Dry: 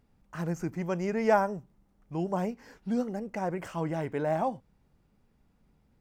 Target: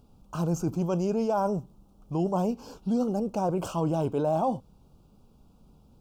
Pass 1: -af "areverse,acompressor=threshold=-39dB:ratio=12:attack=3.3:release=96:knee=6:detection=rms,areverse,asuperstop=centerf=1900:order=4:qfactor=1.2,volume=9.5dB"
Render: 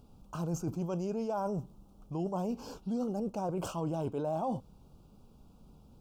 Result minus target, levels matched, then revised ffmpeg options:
compressor: peak gain reduction +8 dB
-af "areverse,acompressor=threshold=-30.5dB:ratio=12:attack=3.3:release=96:knee=6:detection=rms,areverse,asuperstop=centerf=1900:order=4:qfactor=1.2,volume=9.5dB"

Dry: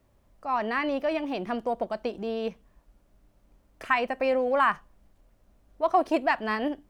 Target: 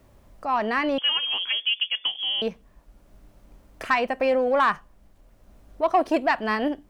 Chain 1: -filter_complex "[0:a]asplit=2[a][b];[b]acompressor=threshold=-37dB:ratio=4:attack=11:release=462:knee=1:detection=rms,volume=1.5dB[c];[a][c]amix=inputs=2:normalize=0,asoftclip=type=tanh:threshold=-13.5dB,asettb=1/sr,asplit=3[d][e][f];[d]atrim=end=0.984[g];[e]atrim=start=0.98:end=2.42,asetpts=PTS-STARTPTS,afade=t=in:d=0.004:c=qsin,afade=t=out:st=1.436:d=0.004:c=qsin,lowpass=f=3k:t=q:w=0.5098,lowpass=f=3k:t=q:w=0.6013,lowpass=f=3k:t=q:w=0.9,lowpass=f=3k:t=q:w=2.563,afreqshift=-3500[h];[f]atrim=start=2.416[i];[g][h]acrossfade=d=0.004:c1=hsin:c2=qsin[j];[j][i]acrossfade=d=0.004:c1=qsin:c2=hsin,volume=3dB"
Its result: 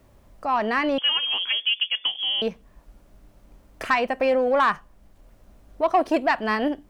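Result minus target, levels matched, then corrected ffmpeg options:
compressor: peak gain reduction -7.5 dB
-filter_complex "[0:a]asplit=2[a][b];[b]acompressor=threshold=-47dB:ratio=4:attack=11:release=462:knee=1:detection=rms,volume=1.5dB[c];[a][c]amix=inputs=2:normalize=0,asoftclip=type=tanh:threshold=-13.5dB,asettb=1/sr,asplit=3[d][e][f];[d]atrim=end=0.984[g];[e]atrim=start=0.98:end=2.42,asetpts=PTS-STARTPTS,afade=t=in:d=0.004:c=qsin,afade=t=out:st=1.436:d=0.004:c=qsin,lowpass=f=3k:t=q:w=0.5098,lowpass=f=3k:t=q:w=0.6013,lowpass=f=3k:t=q:w=0.9,lowpass=f=3k:t=q:w=2.563,afreqshift=-3500[h];[f]atrim=start=2.416[i];[g][h]acrossfade=d=0.004:c1=hsin:c2=qsin[j];[j][i]acrossfade=d=0.004:c1=qsin:c2=hsin,volume=3dB"

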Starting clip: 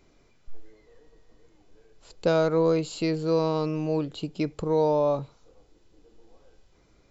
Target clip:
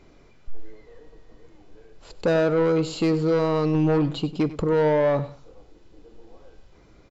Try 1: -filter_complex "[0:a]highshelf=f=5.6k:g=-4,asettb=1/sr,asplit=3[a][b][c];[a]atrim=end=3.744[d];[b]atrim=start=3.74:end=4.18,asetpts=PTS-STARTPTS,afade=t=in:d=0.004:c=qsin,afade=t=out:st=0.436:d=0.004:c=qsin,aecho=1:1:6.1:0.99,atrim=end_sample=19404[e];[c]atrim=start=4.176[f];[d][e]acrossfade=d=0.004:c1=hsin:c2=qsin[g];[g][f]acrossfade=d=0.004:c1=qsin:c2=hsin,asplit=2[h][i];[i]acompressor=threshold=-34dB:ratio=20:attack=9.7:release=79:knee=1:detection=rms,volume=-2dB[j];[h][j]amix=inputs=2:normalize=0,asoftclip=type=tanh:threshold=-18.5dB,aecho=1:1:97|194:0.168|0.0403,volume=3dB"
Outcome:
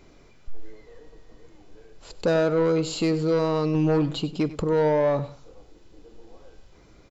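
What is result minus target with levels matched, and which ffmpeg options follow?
compressor: peak gain reduction +10 dB; 8000 Hz band +5.5 dB
-filter_complex "[0:a]highshelf=f=5.6k:g=-11.5,asettb=1/sr,asplit=3[a][b][c];[a]atrim=end=3.744[d];[b]atrim=start=3.74:end=4.18,asetpts=PTS-STARTPTS,afade=t=in:d=0.004:c=qsin,afade=t=out:st=0.436:d=0.004:c=qsin,aecho=1:1:6.1:0.99,atrim=end_sample=19404[e];[c]atrim=start=4.176[f];[d][e]acrossfade=d=0.004:c1=hsin:c2=qsin[g];[g][f]acrossfade=d=0.004:c1=qsin:c2=hsin,asplit=2[h][i];[i]acompressor=threshold=-23.5dB:ratio=20:attack=9.7:release=79:knee=1:detection=rms,volume=-2dB[j];[h][j]amix=inputs=2:normalize=0,asoftclip=type=tanh:threshold=-18.5dB,aecho=1:1:97|194:0.168|0.0403,volume=3dB"

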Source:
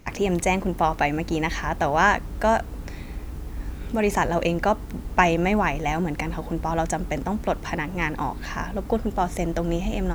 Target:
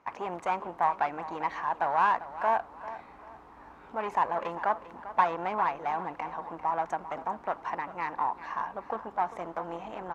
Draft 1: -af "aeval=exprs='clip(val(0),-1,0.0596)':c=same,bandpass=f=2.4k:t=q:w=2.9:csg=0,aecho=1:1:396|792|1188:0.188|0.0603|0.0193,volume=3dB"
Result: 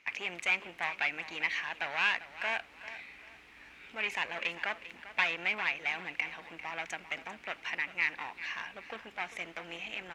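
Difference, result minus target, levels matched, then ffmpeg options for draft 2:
1000 Hz band -11.0 dB
-af "aeval=exprs='clip(val(0),-1,0.0596)':c=same,bandpass=f=1k:t=q:w=2.9:csg=0,aecho=1:1:396|792|1188:0.188|0.0603|0.0193,volume=3dB"

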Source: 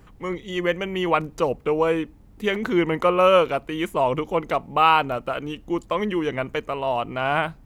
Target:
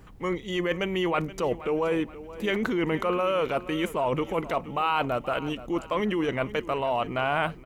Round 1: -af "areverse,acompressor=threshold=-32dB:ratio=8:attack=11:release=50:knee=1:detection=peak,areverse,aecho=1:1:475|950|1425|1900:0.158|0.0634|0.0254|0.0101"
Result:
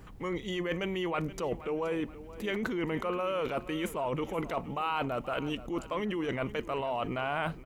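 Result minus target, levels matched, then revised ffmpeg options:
compressor: peak gain reduction +6.5 dB
-af "areverse,acompressor=threshold=-24.5dB:ratio=8:attack=11:release=50:knee=1:detection=peak,areverse,aecho=1:1:475|950|1425|1900:0.158|0.0634|0.0254|0.0101"

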